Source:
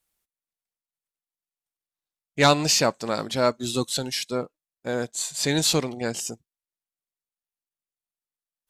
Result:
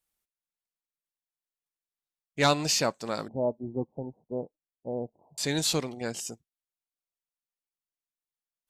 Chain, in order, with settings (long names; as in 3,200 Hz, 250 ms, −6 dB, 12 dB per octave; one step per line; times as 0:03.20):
0:03.28–0:05.38: Butterworth low-pass 910 Hz 72 dB per octave
level −5.5 dB